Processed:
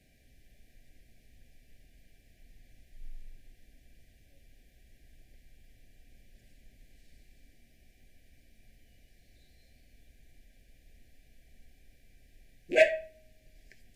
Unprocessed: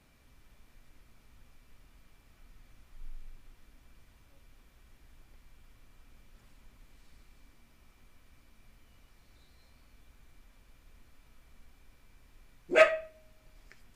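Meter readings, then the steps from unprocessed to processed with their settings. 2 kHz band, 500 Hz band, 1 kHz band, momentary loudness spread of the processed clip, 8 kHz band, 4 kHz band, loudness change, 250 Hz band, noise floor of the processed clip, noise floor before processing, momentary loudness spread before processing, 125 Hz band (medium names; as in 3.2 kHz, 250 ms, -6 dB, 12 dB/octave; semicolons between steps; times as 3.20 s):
-1.0 dB, -0.5 dB, -8.0 dB, 10 LU, -0.5 dB, -0.5 dB, -1.0 dB, -1.0 dB, -64 dBFS, -63 dBFS, 10 LU, 0.0 dB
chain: rattle on loud lows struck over -43 dBFS, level -31 dBFS; Chebyshev band-stop 760–1600 Hz, order 5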